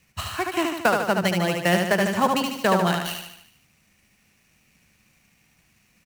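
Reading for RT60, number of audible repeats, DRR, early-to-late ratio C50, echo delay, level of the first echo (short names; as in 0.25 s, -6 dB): none, 6, none, none, 74 ms, -4.0 dB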